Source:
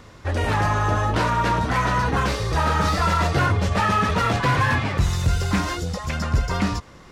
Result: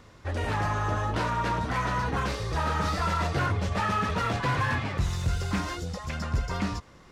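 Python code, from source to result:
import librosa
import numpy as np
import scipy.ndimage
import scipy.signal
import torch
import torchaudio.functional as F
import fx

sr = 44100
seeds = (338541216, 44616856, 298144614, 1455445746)

y = fx.doppler_dist(x, sr, depth_ms=0.13)
y = y * librosa.db_to_amplitude(-7.0)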